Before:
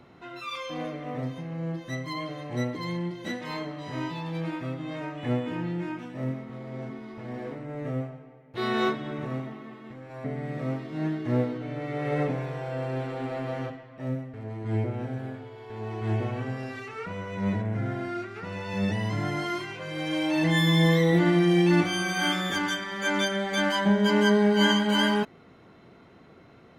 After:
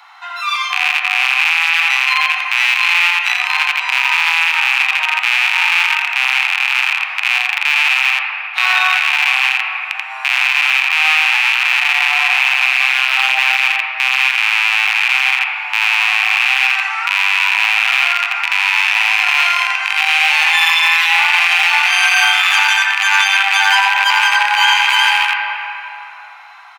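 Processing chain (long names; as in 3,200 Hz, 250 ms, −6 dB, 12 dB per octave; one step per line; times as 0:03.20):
loose part that buzzes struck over −38 dBFS, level −14 dBFS
Butterworth high-pass 750 Hz 96 dB per octave
single-tap delay 85 ms −5.5 dB
on a send at −6 dB: convolution reverb RT60 3.5 s, pre-delay 5 ms
on the sum: boost into a limiter +18 dB
level −1 dB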